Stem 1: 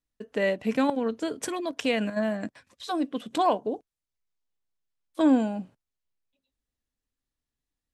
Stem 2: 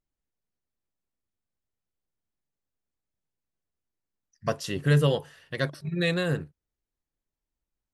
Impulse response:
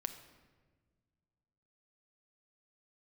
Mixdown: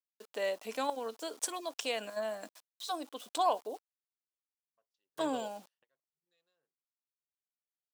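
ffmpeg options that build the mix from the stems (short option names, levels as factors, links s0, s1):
-filter_complex "[0:a]aeval=exprs='val(0)*gte(abs(val(0)),0.00447)':c=same,volume=1.33,asplit=2[s0][s1];[1:a]afwtdn=0.01,adelay=300,volume=0.316[s2];[s1]apad=whole_len=363228[s3];[s2][s3]sidechaingate=range=0.0224:threshold=0.00158:ratio=16:detection=peak[s4];[s0][s4]amix=inputs=2:normalize=0,highpass=880,equalizer=f=1900:w=0.94:g=-13"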